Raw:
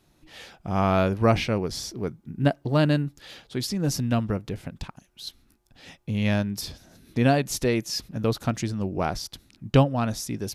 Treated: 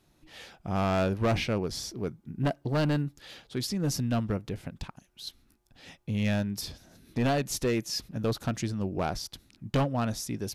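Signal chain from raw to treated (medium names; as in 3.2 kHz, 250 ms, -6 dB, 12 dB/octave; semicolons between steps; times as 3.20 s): overload inside the chain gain 18.5 dB; trim -3 dB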